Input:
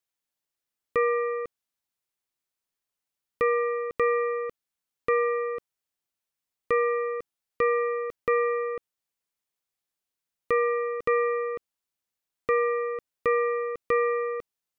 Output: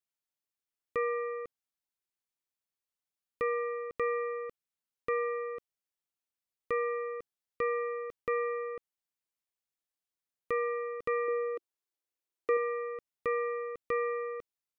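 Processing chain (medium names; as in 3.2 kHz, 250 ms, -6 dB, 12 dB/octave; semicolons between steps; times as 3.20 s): 11.28–12.57 s: resonant low shelf 250 Hz -11.5 dB, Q 3; trim -7.5 dB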